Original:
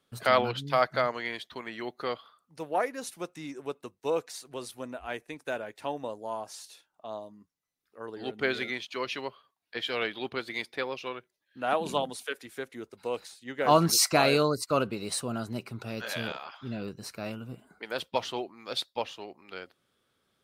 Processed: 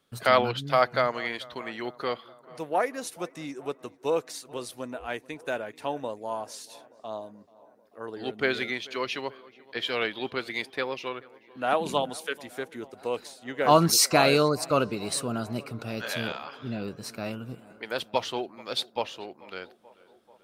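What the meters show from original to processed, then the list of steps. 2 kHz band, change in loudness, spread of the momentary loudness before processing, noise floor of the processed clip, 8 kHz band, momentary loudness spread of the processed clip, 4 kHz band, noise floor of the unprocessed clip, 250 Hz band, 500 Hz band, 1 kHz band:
+2.5 dB, +2.5 dB, 17 LU, -59 dBFS, +2.5 dB, 17 LU, +2.5 dB, -79 dBFS, +2.5 dB, +2.5 dB, +2.5 dB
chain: tape echo 436 ms, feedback 77%, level -21.5 dB, low-pass 2.1 kHz; trim +2.5 dB

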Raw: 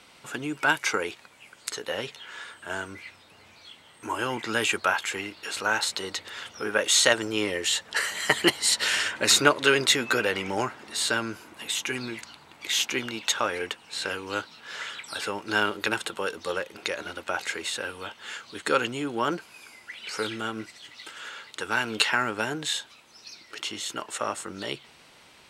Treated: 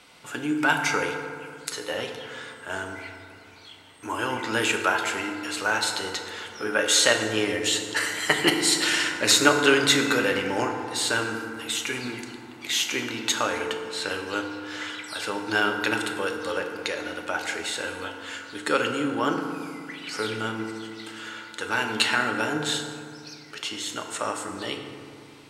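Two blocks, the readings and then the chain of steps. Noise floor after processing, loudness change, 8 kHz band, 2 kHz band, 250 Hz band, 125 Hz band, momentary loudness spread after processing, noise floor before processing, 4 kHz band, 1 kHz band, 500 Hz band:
-46 dBFS, +1.5 dB, +1.0 dB, +2.0 dB, +4.5 dB, +3.0 dB, 16 LU, -54 dBFS, +1.0 dB, +2.0 dB, +2.0 dB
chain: FDN reverb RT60 2.2 s, low-frequency decay 1.35×, high-frequency decay 0.45×, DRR 3 dB

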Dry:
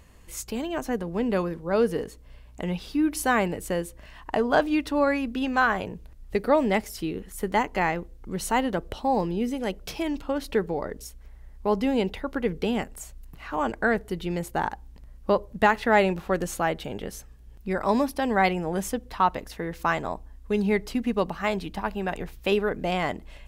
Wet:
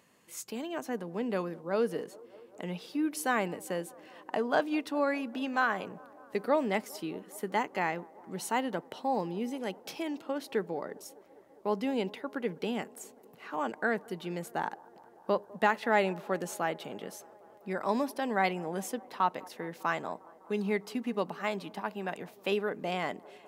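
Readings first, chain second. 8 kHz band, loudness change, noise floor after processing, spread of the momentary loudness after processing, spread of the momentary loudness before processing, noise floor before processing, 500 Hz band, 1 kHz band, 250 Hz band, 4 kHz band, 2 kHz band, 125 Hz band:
-6.0 dB, -6.5 dB, -57 dBFS, 14 LU, 12 LU, -48 dBFS, -6.5 dB, -6.0 dB, -7.5 dB, -6.0 dB, -6.0 dB, -9.5 dB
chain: high-pass 150 Hz 24 dB/octave; bass shelf 220 Hz -3.5 dB; feedback echo behind a band-pass 201 ms, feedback 81%, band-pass 580 Hz, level -22 dB; trim -6 dB

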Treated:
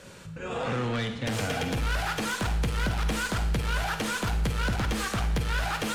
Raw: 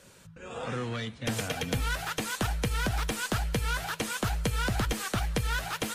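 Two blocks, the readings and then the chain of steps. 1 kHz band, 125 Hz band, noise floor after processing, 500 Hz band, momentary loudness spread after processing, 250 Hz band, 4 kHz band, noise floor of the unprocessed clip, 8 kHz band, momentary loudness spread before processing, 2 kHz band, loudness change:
+2.5 dB, +2.5 dB, -40 dBFS, +2.5 dB, 2 LU, +3.0 dB, +1.0 dB, -51 dBFS, -1.0 dB, 5 LU, +2.5 dB, +2.0 dB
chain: treble shelf 7.3 kHz -10.5 dB; in parallel at -2.5 dB: peak limiter -28.5 dBFS, peak gain reduction 8.5 dB; on the sum: saturation -28.5 dBFS, distortion -11 dB; Schroeder reverb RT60 0.74 s, DRR 7 dB; trim +3.5 dB

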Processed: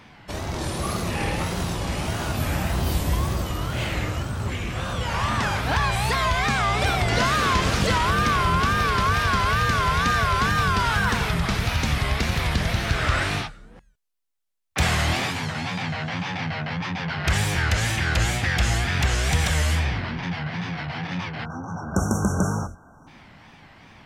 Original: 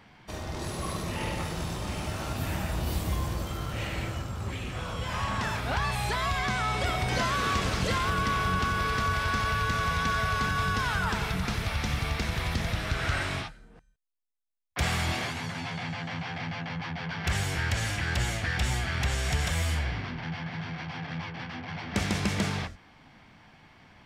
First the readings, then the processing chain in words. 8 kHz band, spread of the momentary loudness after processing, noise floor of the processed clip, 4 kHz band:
+6.5 dB, 8 LU, -50 dBFS, +6.0 dB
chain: wow and flutter 150 cents; spectral selection erased 21.45–23.07 s, 1.6–5.5 kHz; trim +6.5 dB

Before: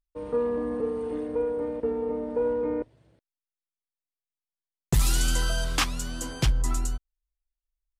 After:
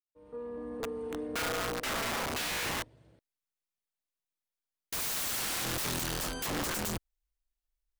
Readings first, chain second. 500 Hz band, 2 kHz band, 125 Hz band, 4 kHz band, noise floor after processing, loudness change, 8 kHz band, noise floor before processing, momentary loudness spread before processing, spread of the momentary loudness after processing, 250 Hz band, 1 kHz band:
-11.0 dB, +0.5 dB, -12.5 dB, -1.5 dB, under -85 dBFS, -5.0 dB, -2.0 dB, under -85 dBFS, 8 LU, 10 LU, -7.5 dB, -0.5 dB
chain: fade-in on the opening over 2.28 s; integer overflow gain 29 dB

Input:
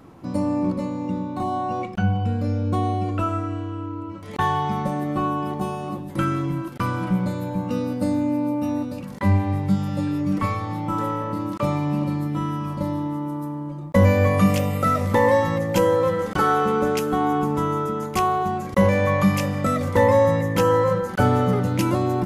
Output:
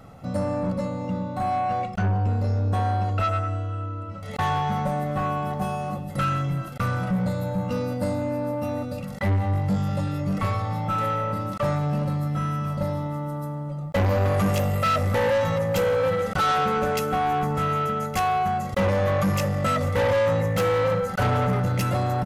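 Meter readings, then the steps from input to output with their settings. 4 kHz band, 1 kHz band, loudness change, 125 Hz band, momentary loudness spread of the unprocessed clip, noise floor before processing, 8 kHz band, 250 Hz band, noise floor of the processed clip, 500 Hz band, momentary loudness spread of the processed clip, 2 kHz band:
+1.0 dB, -1.0 dB, -2.5 dB, -0.5 dB, 9 LU, -33 dBFS, -1.5 dB, -6.0 dB, -33 dBFS, -2.5 dB, 7 LU, -1.5 dB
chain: comb 1.5 ms, depth 79%; saturation -18.5 dBFS, distortion -9 dB

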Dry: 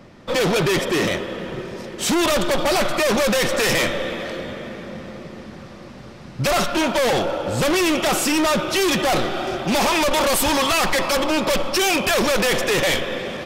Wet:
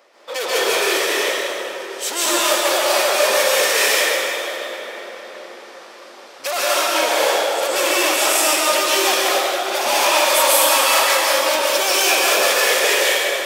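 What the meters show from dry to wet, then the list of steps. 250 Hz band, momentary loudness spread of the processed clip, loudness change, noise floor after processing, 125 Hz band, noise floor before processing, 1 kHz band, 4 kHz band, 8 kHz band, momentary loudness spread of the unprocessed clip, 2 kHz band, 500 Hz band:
-9.0 dB, 13 LU, +3.5 dB, -40 dBFS, under -30 dB, -39 dBFS, +3.5 dB, +5.5 dB, +7.5 dB, 15 LU, +4.5 dB, +1.5 dB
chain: high-pass 460 Hz 24 dB/octave; treble shelf 6.7 kHz +7 dB; plate-style reverb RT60 2 s, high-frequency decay 0.9×, pre-delay 120 ms, DRR -7.5 dB; trim -4.5 dB

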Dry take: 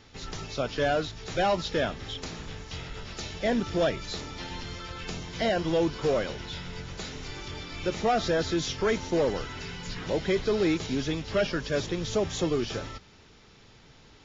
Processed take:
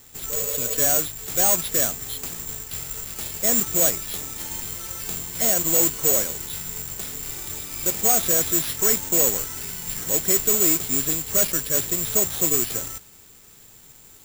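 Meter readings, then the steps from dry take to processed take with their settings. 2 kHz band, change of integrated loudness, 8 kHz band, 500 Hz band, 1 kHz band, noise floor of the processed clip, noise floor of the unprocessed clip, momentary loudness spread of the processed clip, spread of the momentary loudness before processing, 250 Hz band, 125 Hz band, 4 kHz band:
0.0 dB, +9.0 dB, no reading, -2.0 dB, -1.5 dB, -49 dBFS, -55 dBFS, 13 LU, 12 LU, -2.0 dB, -2.0 dB, +2.5 dB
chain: spectral replace 0.33–0.74 s, 450–1400 Hz after; treble shelf 6.3 kHz -6.5 dB; modulation noise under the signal 12 dB; careless resampling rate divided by 6×, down none, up zero stuff; trim -2 dB

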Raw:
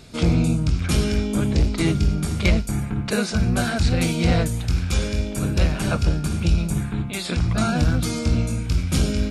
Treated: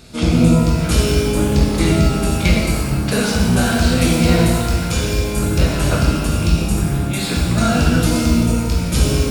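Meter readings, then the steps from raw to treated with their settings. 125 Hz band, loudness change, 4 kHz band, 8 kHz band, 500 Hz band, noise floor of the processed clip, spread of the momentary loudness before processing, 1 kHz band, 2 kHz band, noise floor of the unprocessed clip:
+4.5 dB, +5.5 dB, +6.5 dB, +7.5 dB, +7.5 dB, -21 dBFS, 4 LU, +7.5 dB, +6.0 dB, -29 dBFS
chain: treble shelf 8.6 kHz +4.5 dB; pitch-shifted reverb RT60 1.4 s, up +12 st, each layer -8 dB, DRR -2 dB; trim +1 dB

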